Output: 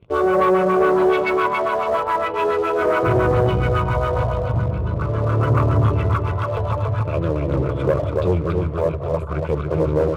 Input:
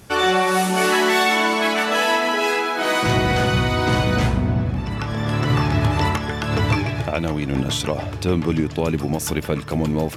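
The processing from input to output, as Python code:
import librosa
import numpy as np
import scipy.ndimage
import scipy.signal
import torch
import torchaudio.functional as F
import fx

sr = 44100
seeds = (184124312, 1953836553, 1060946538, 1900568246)

p1 = np.where(x < 0.0, 10.0 ** (-7.0 / 20.0) * x, x)
p2 = fx.phaser_stages(p1, sr, stages=4, low_hz=280.0, high_hz=5000.0, hz=0.42, feedback_pct=30)
p3 = fx.fixed_phaser(p2, sr, hz=1200.0, stages=8)
p4 = p3 + fx.echo_feedback(p3, sr, ms=282, feedback_pct=33, wet_db=-4.0, dry=0)
p5 = fx.filter_lfo_lowpass(p4, sr, shape='sine', hz=7.2, low_hz=610.0, high_hz=1800.0, q=1.5)
p6 = fx.leveller(p5, sr, passes=2)
y = scipy.signal.sosfilt(scipy.signal.butter(2, 60.0, 'highpass', fs=sr, output='sos'), p6)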